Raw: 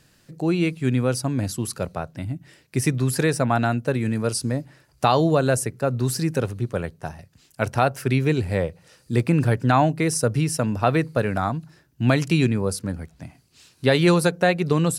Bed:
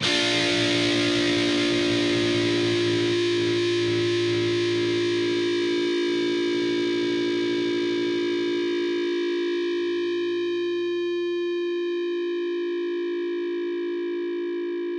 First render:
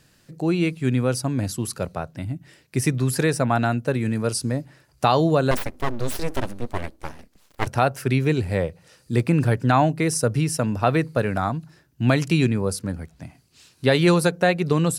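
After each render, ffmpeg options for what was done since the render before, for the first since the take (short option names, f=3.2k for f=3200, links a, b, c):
-filter_complex "[0:a]asettb=1/sr,asplit=3[a][b][c];[a]atrim=end=5.514[d];[b]atrim=start=5.51:end=7.67,asetpts=PTS-STARTPTS,afade=t=in:d=0.004:c=qsin,afade=t=out:st=2.156:d=0.004:c=qsin,aeval=exprs='abs(val(0))':c=same[e];[c]atrim=start=7.666[f];[d][e]acrossfade=d=0.004:c1=hsin:c2=qsin[g];[g][f]acrossfade=d=0.004:c1=qsin:c2=hsin"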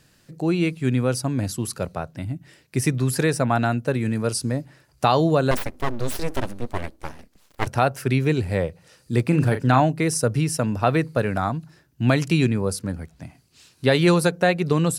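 -filter_complex "[0:a]asettb=1/sr,asplit=3[a][b][c];[a]atrim=end=9.284[d];[b]atrim=start=9.28:end=9.8,asetpts=PTS-STARTPTS,afade=t=in:d=0.004:c=qsin,afade=t=out:st=0.516:d=0.004:c=qsin,asplit=2[e][f];[f]adelay=39,volume=-8.5dB[g];[e][g]amix=inputs=2:normalize=0,atrim=end_sample=22932[h];[c]atrim=start=9.796[i];[d][h]acrossfade=d=0.004:c1=hsin:c2=qsin[j];[j][i]acrossfade=d=0.004:c1=qsin:c2=hsin"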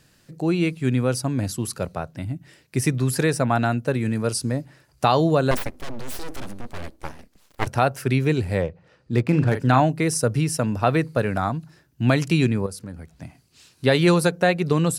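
-filter_complex "[0:a]asettb=1/sr,asplit=3[a][b][c];[a]atrim=end=5.744[d];[b]atrim=start=5.74:end=6.98,asetpts=PTS-STARTPTS,afade=t=in:d=0.004:c=qsin,afade=t=out:st=1.236:d=0.004:c=qsin,volume=25dB,asoftclip=hard,volume=-25dB[e];[c]atrim=start=6.976[f];[d][e]acrossfade=d=0.004:c1=hsin:c2=qsin[g];[g][f]acrossfade=d=0.004:c1=qsin:c2=hsin,asettb=1/sr,asplit=3[h][i][j];[h]atrim=end=8.614[k];[i]atrim=start=8.61:end=9.55,asetpts=PTS-STARTPTS,afade=t=in:d=0.004:c=qsin,afade=t=out:st=0.936:d=0.004:c=qsin,adynamicsmooth=sensitivity=6:basefreq=2.3k[l];[j]atrim=start=9.546[m];[k][l]acrossfade=d=0.004:c1=hsin:c2=qsin[n];[n][m]acrossfade=d=0.004:c1=qsin:c2=hsin,asettb=1/sr,asplit=3[o][p][q];[o]atrim=end=12.664[r];[p]atrim=start=12.66:end=13.13,asetpts=PTS-STARTPTS,afade=t=in:d=0.004:c=qsin,afade=t=out:st=0.466:d=0.004:c=qsin,acompressor=threshold=-37dB:ratio=2:attack=3.2:release=140:knee=1:detection=peak[s];[q]atrim=start=13.126[t];[r][s]acrossfade=d=0.004:c1=hsin:c2=qsin[u];[u][t]acrossfade=d=0.004:c1=qsin:c2=hsin"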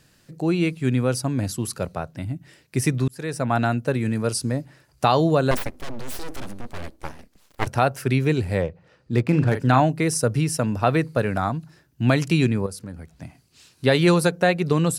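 -filter_complex "[0:a]asplit=2[a][b];[a]atrim=end=3.08,asetpts=PTS-STARTPTS,afade=t=out:st=3.076:d=0.004:c=hsin[c];[b]atrim=start=3.08,asetpts=PTS-STARTPTS,afade=t=in:d=0.5[d];[c][d]concat=n=2:v=0:a=1"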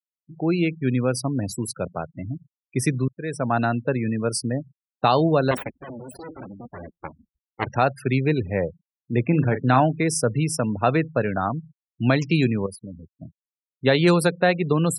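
-af "afftfilt=real='re*gte(hypot(re,im),0.0282)':imag='im*gte(hypot(re,im),0.0282)':win_size=1024:overlap=0.75,highpass=110"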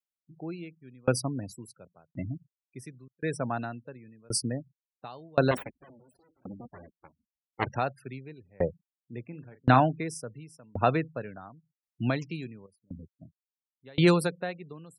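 -af "aeval=exprs='val(0)*pow(10,-34*if(lt(mod(0.93*n/s,1),2*abs(0.93)/1000),1-mod(0.93*n/s,1)/(2*abs(0.93)/1000),(mod(0.93*n/s,1)-2*abs(0.93)/1000)/(1-2*abs(0.93)/1000))/20)':c=same"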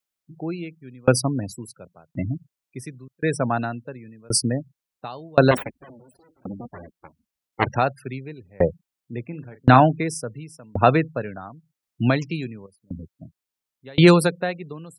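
-af "volume=8.5dB,alimiter=limit=-1dB:level=0:latency=1"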